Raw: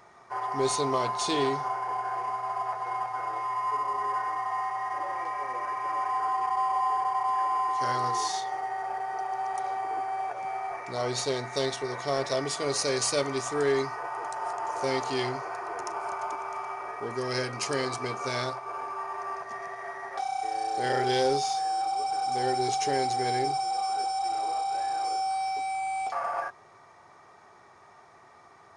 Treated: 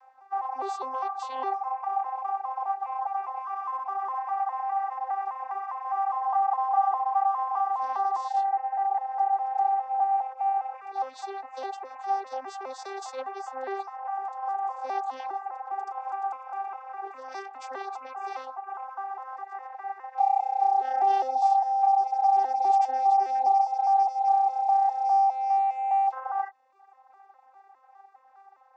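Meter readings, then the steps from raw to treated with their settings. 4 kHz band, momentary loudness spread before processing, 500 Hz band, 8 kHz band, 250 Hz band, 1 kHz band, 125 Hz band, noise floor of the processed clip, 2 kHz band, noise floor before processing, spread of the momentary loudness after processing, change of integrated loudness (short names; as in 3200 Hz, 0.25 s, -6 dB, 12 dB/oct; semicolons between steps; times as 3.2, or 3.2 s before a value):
under -15 dB, 8 LU, -10.5 dB, under -15 dB, under -15 dB, +4.5 dB, under -40 dB, -56 dBFS, -9.0 dB, -55 dBFS, 14 LU, +2.5 dB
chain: arpeggiated vocoder bare fifth, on C4, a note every 0.204 s; reverb removal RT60 0.71 s; resonant high-pass 800 Hz, resonance Q 4.9; gain -4 dB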